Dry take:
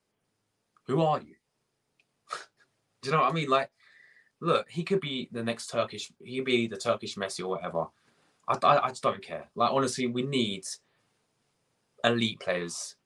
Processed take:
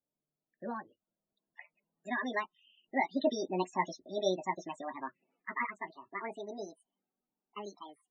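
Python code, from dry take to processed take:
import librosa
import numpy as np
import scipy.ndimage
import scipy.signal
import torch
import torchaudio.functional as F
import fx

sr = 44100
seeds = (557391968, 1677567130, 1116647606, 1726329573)

y = fx.speed_glide(x, sr, from_pct=135, to_pct=187)
y = fx.doppler_pass(y, sr, speed_mps=14, closest_m=9.2, pass_at_s=3.61)
y = scipy.signal.sosfilt(scipy.signal.butter(2, 5800.0, 'lowpass', fs=sr, output='sos'), y)
y = fx.low_shelf(y, sr, hz=490.0, db=6.0)
y = fx.spec_topn(y, sr, count=32)
y = y * librosa.db_to_amplitude(-3.0)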